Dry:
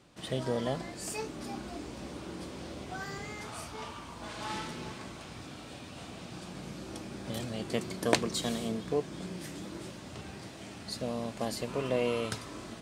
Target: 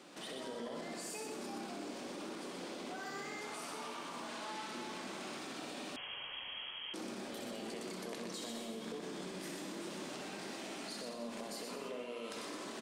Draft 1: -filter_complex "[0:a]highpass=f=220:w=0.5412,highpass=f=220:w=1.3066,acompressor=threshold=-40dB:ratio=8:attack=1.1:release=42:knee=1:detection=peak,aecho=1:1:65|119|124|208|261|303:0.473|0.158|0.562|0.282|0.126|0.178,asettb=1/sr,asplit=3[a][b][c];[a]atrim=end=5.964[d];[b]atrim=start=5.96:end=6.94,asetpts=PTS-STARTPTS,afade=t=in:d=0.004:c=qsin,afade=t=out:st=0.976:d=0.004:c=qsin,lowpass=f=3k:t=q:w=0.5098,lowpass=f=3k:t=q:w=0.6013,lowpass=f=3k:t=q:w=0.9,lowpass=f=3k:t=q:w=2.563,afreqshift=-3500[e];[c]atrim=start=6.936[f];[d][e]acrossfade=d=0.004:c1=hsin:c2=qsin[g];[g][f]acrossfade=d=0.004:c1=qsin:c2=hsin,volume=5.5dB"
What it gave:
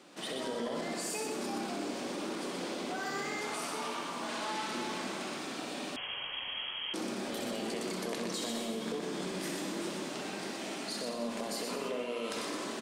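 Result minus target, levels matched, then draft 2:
compressor: peak gain reduction -7.5 dB
-filter_complex "[0:a]highpass=f=220:w=0.5412,highpass=f=220:w=1.3066,acompressor=threshold=-48.5dB:ratio=8:attack=1.1:release=42:knee=1:detection=peak,aecho=1:1:65|119|124|208|261|303:0.473|0.158|0.562|0.282|0.126|0.178,asettb=1/sr,asplit=3[a][b][c];[a]atrim=end=5.964[d];[b]atrim=start=5.96:end=6.94,asetpts=PTS-STARTPTS,afade=t=in:d=0.004:c=qsin,afade=t=out:st=0.976:d=0.004:c=qsin,lowpass=f=3k:t=q:w=0.5098,lowpass=f=3k:t=q:w=0.6013,lowpass=f=3k:t=q:w=0.9,lowpass=f=3k:t=q:w=2.563,afreqshift=-3500[e];[c]atrim=start=6.936[f];[d][e]acrossfade=d=0.004:c1=hsin:c2=qsin[g];[g][f]acrossfade=d=0.004:c1=qsin:c2=hsin,volume=5.5dB"

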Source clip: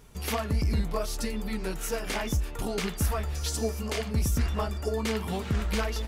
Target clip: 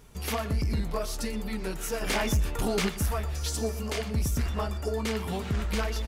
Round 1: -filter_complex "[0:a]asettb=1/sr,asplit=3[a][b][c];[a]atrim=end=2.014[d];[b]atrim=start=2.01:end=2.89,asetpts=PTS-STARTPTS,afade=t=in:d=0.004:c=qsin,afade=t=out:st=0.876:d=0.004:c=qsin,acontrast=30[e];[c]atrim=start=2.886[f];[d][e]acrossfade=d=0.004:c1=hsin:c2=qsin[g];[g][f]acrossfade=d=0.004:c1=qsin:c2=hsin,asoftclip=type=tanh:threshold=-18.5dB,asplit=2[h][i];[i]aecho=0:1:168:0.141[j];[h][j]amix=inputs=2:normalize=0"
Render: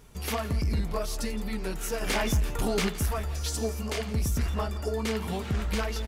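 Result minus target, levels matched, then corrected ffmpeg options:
echo 47 ms late
-filter_complex "[0:a]asettb=1/sr,asplit=3[a][b][c];[a]atrim=end=2.014[d];[b]atrim=start=2.01:end=2.89,asetpts=PTS-STARTPTS,afade=t=in:d=0.004:c=qsin,afade=t=out:st=0.876:d=0.004:c=qsin,acontrast=30[e];[c]atrim=start=2.886[f];[d][e]acrossfade=d=0.004:c1=hsin:c2=qsin[g];[g][f]acrossfade=d=0.004:c1=qsin:c2=hsin,asoftclip=type=tanh:threshold=-18.5dB,asplit=2[h][i];[i]aecho=0:1:121:0.141[j];[h][j]amix=inputs=2:normalize=0"

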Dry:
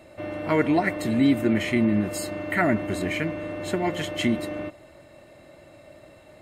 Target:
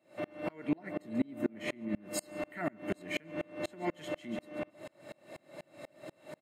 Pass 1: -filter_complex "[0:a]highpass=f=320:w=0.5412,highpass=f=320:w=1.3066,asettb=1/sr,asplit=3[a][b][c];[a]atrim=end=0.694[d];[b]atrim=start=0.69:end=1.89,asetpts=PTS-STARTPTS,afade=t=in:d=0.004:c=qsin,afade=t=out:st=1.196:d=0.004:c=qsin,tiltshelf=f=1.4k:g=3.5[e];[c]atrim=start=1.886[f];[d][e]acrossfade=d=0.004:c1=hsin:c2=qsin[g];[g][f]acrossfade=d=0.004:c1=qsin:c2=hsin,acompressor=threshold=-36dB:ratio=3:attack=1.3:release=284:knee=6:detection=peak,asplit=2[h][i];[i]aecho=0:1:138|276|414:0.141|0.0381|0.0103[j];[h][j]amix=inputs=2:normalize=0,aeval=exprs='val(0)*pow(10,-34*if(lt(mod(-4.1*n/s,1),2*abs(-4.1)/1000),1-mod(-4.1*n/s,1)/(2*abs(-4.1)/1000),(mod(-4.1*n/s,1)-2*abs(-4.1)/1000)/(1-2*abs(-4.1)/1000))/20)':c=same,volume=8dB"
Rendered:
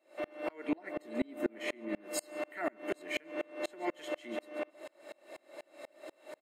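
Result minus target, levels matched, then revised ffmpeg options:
125 Hz band -11.5 dB
-filter_complex "[0:a]highpass=f=140:w=0.5412,highpass=f=140:w=1.3066,asettb=1/sr,asplit=3[a][b][c];[a]atrim=end=0.694[d];[b]atrim=start=0.69:end=1.89,asetpts=PTS-STARTPTS,afade=t=in:d=0.004:c=qsin,afade=t=out:st=1.196:d=0.004:c=qsin,tiltshelf=f=1.4k:g=3.5[e];[c]atrim=start=1.886[f];[d][e]acrossfade=d=0.004:c1=hsin:c2=qsin[g];[g][f]acrossfade=d=0.004:c1=qsin:c2=hsin,acompressor=threshold=-36dB:ratio=3:attack=1.3:release=284:knee=6:detection=peak,asplit=2[h][i];[i]aecho=0:1:138|276|414:0.141|0.0381|0.0103[j];[h][j]amix=inputs=2:normalize=0,aeval=exprs='val(0)*pow(10,-34*if(lt(mod(-4.1*n/s,1),2*abs(-4.1)/1000),1-mod(-4.1*n/s,1)/(2*abs(-4.1)/1000),(mod(-4.1*n/s,1)-2*abs(-4.1)/1000)/(1-2*abs(-4.1)/1000))/20)':c=same,volume=8dB"

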